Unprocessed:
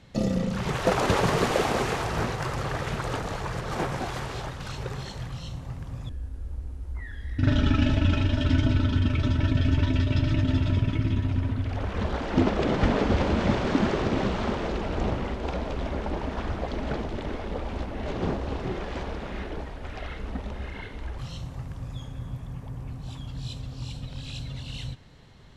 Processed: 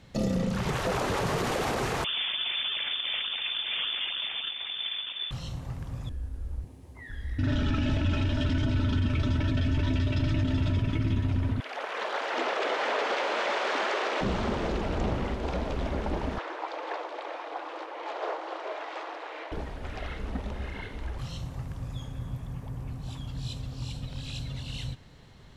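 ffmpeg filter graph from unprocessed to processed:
-filter_complex "[0:a]asettb=1/sr,asplit=3[a][b][c];[a]atrim=end=2.044[d];[b]atrim=start=2.04:end=5.31,asetpts=PTS-STARTPTS,afade=t=in:d=0.004:c=qsin,afade=t=out:st=3.266:d=0.004:c=qsin,acrusher=samples=18:mix=1:aa=0.000001:lfo=1:lforange=28.8:lforate=3.4,lowpass=f=3.1k:t=q:w=0.5098,lowpass=f=3.1k:t=q:w=0.6013,lowpass=f=3.1k:t=q:w=0.9,lowpass=f=3.1k:t=q:w=2.563,afreqshift=-3600[e];[c]atrim=start=5.306[f];[d][e]acrossfade=d=0.004:c1=hsin:c2=qsin[g];[g][f]acrossfade=d=0.004:c1=qsin:c2=hsin,asettb=1/sr,asplit=3[h][i][j];[h]atrim=end=6.644[k];[i]atrim=start=6.64:end=7.1,asetpts=PTS-STARTPTS,afade=t=in:d=0.004:c=qsin,afade=t=out:st=0.456:d=0.004:c=qsin,highpass=f=100:w=0.5412,highpass=f=100:w=1.3066,equalizer=f=1.4k:t=o:w=0.23:g=-14.5[l];[j]atrim=start=7.096[m];[k][l]acrossfade=d=0.004:c1=hsin:c2=qsin[n];[n][m]acrossfade=d=0.004:c1=qsin:c2=hsin,asettb=1/sr,asplit=3[o][p][q];[o]atrim=end=11.604[r];[p]atrim=start=11.6:end=14.21,asetpts=PTS-STARTPTS,afade=t=in:d=0.004:c=qsin,afade=t=out:st=2.606:d=0.004:c=qsin,highpass=f=450:w=0.5412,highpass=f=450:w=1.3066,equalizer=f=2k:w=0.5:g=5.5[s];[q]atrim=start=14.206[t];[r][s]acrossfade=d=0.004:c1=hsin:c2=qsin[u];[u][t]acrossfade=d=0.004:c1=qsin:c2=hsin,asettb=1/sr,asplit=3[v][w][x];[v]atrim=end=16.384[y];[w]atrim=start=16.38:end=19.52,asetpts=PTS-STARTPTS,afade=t=in:d=0.004:c=qsin,afade=t=out:st=3.136:d=0.004:c=qsin,highpass=f=420:p=1,aemphasis=mode=reproduction:type=50fm,afreqshift=260[z];[x]atrim=start=19.516[aa];[y][z]acrossfade=d=0.004:c1=hsin:c2=qsin[ab];[ab][aa]acrossfade=d=0.004:c1=qsin:c2=hsin,aemphasis=mode=production:type=50fm,alimiter=limit=-19dB:level=0:latency=1:release=16,lowpass=f=3.2k:p=1"

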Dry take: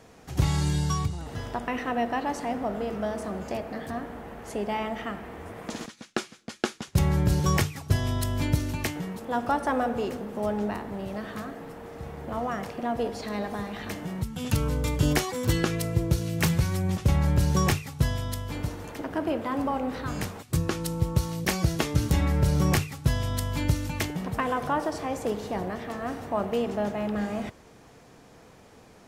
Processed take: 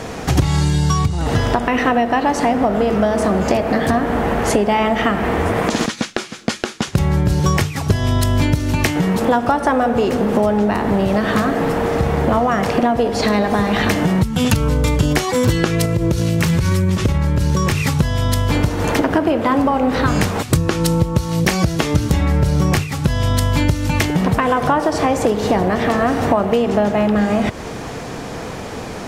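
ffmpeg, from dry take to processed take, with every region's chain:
-filter_complex "[0:a]asettb=1/sr,asplit=3[a][b][c];[a]atrim=end=15.854[d];[b]atrim=start=15.85:end=17.97,asetpts=PTS-STARTPTS,afade=t=in:d=0.004:c=qsin,afade=t=out:st=2.116:d=0.004:c=qsin,acompressor=threshold=-30dB:ratio=6:attack=3.2:release=140:knee=1:detection=peak,bandreject=f=750:w=6.3[e];[c]atrim=start=17.966[f];[d][e]acrossfade=d=0.004:c1=hsin:c2=qsin[g];[g][f]acrossfade=d=0.004:c1=qsin:c2=hsin,highshelf=f=11k:g=-8.5,acompressor=threshold=-37dB:ratio=10,alimiter=level_in=25.5dB:limit=-1dB:release=50:level=0:latency=1,volume=-1dB"

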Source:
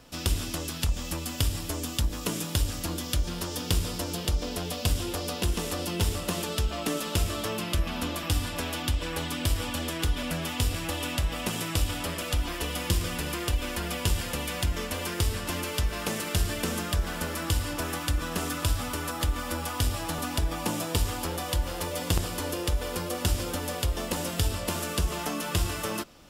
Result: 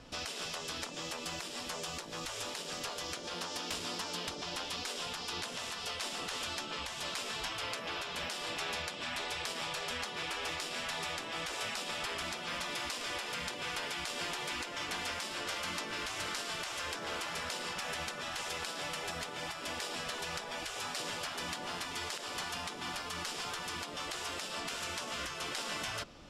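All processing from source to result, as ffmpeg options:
-filter_complex "[0:a]asettb=1/sr,asplit=3[a][b][c];[a]atrim=end=3.344[d];[b]atrim=start=3.34:end=4.35,asetpts=PTS-STARTPTS,afade=t=in:d=0.004:c=qsin,afade=t=out:st=1.006:d=0.004:c=qsin,highpass=360,aeval=exprs='(mod(11.2*val(0)+1,2)-1)/11.2':c=same[e];[c]atrim=start=4.346[f];[d][e]acrossfade=d=0.004:c1=hsin:c2=qsin[g];[g][f]acrossfade=d=0.004:c1=qsin:c2=hsin,afftfilt=real='re*lt(hypot(re,im),0.0562)':imag='im*lt(hypot(re,im),0.0562)':win_size=1024:overlap=0.75,lowpass=6.1k,alimiter=level_in=1dB:limit=-24dB:level=0:latency=1:release=192,volume=-1dB"

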